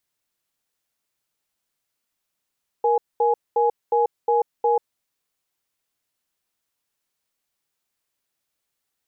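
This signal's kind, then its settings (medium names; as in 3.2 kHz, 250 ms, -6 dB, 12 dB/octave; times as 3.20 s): cadence 471 Hz, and 836 Hz, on 0.14 s, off 0.22 s, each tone -18.5 dBFS 2.01 s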